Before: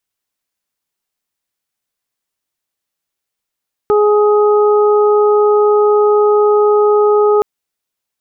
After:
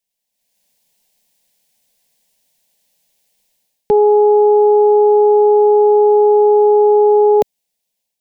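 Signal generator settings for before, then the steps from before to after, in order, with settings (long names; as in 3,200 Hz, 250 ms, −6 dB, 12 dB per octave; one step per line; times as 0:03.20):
steady harmonic partials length 3.52 s, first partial 418 Hz, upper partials −10.5/−10 dB, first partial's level −8 dB
automatic gain control gain up to 16.5 dB
phaser with its sweep stopped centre 340 Hz, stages 6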